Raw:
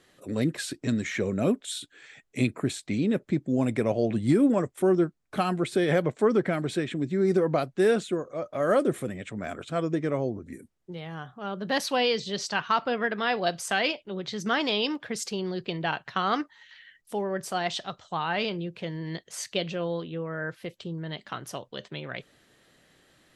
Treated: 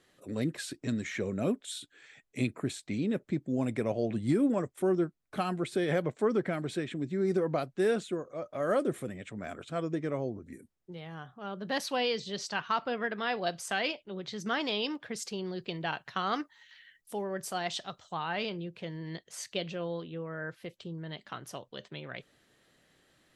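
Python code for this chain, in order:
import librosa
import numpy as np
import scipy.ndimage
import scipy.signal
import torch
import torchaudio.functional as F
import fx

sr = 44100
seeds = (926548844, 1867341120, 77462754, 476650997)

y = fx.high_shelf(x, sr, hz=7100.0, db=8.0, at=(15.59, 18.14))
y = F.gain(torch.from_numpy(y), -5.5).numpy()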